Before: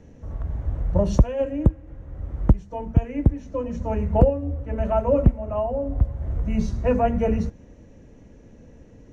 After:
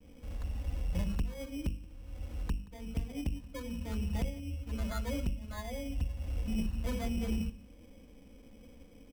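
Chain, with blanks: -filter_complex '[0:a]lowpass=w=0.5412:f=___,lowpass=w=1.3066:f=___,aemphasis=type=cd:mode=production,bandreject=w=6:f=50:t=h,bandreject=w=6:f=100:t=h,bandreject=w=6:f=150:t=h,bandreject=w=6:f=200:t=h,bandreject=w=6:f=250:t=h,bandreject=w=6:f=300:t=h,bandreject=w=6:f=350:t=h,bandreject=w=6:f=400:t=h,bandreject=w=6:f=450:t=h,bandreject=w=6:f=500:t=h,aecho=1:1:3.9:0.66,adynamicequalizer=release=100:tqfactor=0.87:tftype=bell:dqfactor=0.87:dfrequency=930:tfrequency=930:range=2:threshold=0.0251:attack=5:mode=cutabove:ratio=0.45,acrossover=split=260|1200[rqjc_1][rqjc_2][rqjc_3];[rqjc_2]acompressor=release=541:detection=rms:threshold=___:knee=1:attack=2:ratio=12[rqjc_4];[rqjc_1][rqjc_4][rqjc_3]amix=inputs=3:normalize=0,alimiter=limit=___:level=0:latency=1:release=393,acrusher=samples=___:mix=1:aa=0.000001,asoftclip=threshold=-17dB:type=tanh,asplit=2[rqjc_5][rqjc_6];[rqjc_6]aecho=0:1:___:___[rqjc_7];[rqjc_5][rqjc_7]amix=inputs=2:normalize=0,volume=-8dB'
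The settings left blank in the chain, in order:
3400, 3400, -33dB, -12dB, 16, 177, 0.0841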